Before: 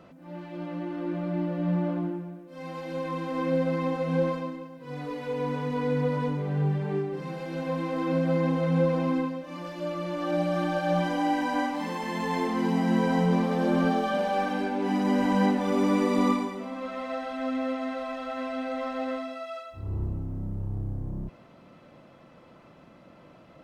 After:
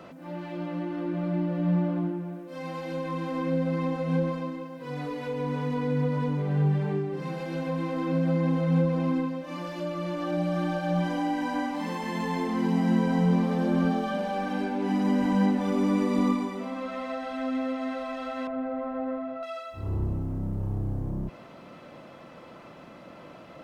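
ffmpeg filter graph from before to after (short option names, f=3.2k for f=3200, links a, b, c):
-filter_complex "[0:a]asettb=1/sr,asplit=3[a][b][c];[a]atrim=end=18.474[d];[b]atrim=start=18.47:end=19.43,asetpts=PTS-STARTPTS,afade=t=in:d=0.004:c=qsin,afade=t=out:st=0.956:d=0.004:c=qsin,aeval=exprs='val(0)+0.5*0.00562*sgn(val(0))':c=same,lowpass=1.2k[e];[c]atrim=start=19.426[f];[d][e]acrossfade=d=0.004:c1=hsin:c2=qsin[g];[g][f]acrossfade=d=0.004:c1=qsin:c2=hsin,lowshelf=f=190:g=-7,acrossover=split=230[h][i];[i]acompressor=threshold=-46dB:ratio=2[j];[h][j]amix=inputs=2:normalize=0,volume=7.5dB"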